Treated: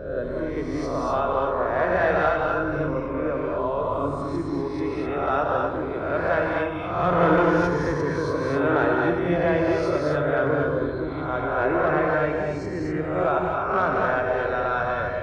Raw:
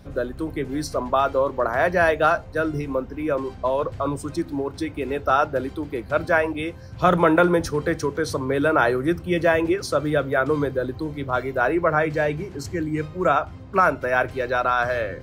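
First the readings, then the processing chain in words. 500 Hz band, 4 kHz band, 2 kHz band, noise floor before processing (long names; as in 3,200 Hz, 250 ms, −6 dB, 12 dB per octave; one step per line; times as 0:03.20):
−0.5 dB, −5.5 dB, −2.5 dB, −40 dBFS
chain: peak hold with a rise ahead of every peak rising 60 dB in 0.90 s
high-shelf EQ 5,300 Hz +4.5 dB
asymmetric clip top −10 dBFS
head-to-tape spacing loss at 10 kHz 26 dB
on a send: feedback echo with a band-pass in the loop 90 ms, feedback 76%, band-pass 910 Hz, level −9.5 dB
on the sum: reverb whose tail is shaped and stops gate 280 ms rising, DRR 0 dB
level −5 dB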